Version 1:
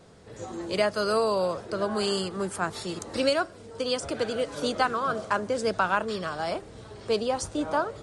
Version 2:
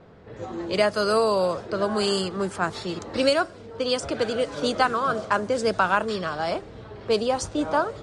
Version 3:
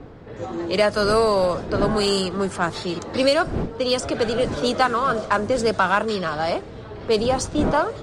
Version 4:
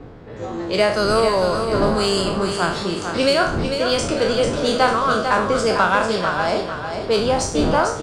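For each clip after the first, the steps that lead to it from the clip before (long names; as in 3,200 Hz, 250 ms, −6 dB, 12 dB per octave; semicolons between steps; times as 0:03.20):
low-pass that shuts in the quiet parts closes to 2,300 Hz, open at −21.5 dBFS; level +3.5 dB
wind on the microphone 300 Hz −36 dBFS; in parallel at −4 dB: soft clipping −21 dBFS, distortion −10 dB
peak hold with a decay on every bin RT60 0.51 s; on a send: repeating echo 447 ms, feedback 38%, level −7 dB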